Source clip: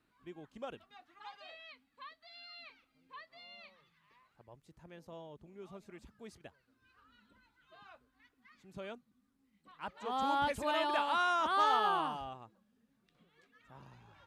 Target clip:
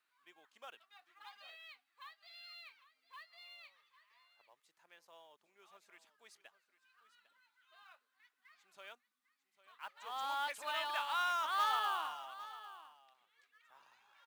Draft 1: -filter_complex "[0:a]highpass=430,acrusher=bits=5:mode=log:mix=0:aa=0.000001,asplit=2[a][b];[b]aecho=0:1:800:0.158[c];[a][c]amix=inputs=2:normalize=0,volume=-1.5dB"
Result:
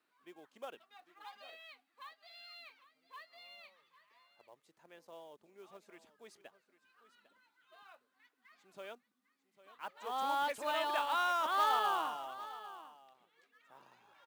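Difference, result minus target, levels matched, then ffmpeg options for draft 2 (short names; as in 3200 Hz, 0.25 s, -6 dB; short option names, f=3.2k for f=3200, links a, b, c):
500 Hz band +7.0 dB
-filter_complex "[0:a]highpass=1.1k,acrusher=bits=5:mode=log:mix=0:aa=0.000001,asplit=2[a][b];[b]aecho=0:1:800:0.158[c];[a][c]amix=inputs=2:normalize=0,volume=-1.5dB"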